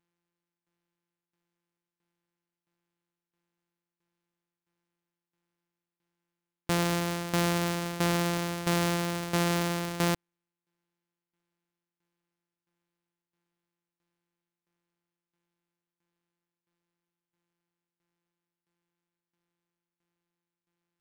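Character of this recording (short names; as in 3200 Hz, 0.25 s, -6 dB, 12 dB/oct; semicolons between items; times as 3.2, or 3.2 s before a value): a buzz of ramps at a fixed pitch in blocks of 256 samples; tremolo saw down 1.5 Hz, depth 80%; aliases and images of a low sample rate 15000 Hz, jitter 20%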